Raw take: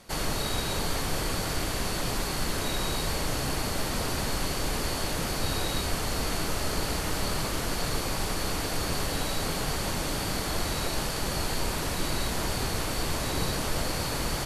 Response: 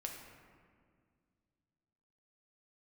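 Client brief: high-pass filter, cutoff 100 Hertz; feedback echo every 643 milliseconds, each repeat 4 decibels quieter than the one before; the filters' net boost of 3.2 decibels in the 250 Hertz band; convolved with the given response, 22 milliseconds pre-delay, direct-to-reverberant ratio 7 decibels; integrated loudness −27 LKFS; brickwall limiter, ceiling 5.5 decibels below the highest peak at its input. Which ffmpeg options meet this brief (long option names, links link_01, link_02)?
-filter_complex "[0:a]highpass=100,equalizer=frequency=250:width_type=o:gain=4.5,alimiter=limit=-22dB:level=0:latency=1,aecho=1:1:643|1286|1929|2572|3215|3858|4501|5144|5787:0.631|0.398|0.25|0.158|0.0994|0.0626|0.0394|0.0249|0.0157,asplit=2[link_01][link_02];[1:a]atrim=start_sample=2205,adelay=22[link_03];[link_02][link_03]afir=irnorm=-1:irlink=0,volume=-5.5dB[link_04];[link_01][link_04]amix=inputs=2:normalize=0,volume=1dB"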